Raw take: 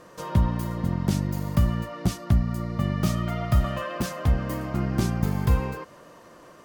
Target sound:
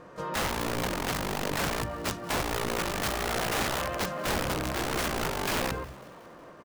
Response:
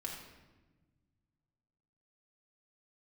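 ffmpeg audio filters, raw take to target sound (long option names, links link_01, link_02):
-filter_complex "[0:a]lowpass=frequency=2100:poles=1,asplit=2[link_01][link_02];[1:a]atrim=start_sample=2205,afade=type=out:start_time=0.45:duration=0.01,atrim=end_sample=20286,lowpass=2500[link_03];[link_02][link_03]afir=irnorm=-1:irlink=0,volume=-18dB[link_04];[link_01][link_04]amix=inputs=2:normalize=0,aeval=exprs='(mod(15.8*val(0)+1,2)-1)/15.8':channel_layout=same,asplit=6[link_05][link_06][link_07][link_08][link_09][link_10];[link_06]adelay=183,afreqshift=140,volume=-21.5dB[link_11];[link_07]adelay=366,afreqshift=280,volume=-25.8dB[link_12];[link_08]adelay=549,afreqshift=420,volume=-30.1dB[link_13];[link_09]adelay=732,afreqshift=560,volume=-34.4dB[link_14];[link_10]adelay=915,afreqshift=700,volume=-38.7dB[link_15];[link_05][link_11][link_12][link_13][link_14][link_15]amix=inputs=6:normalize=0,asplit=2[link_16][link_17];[link_17]asetrate=58866,aresample=44100,atempo=0.749154,volume=-11dB[link_18];[link_16][link_18]amix=inputs=2:normalize=0"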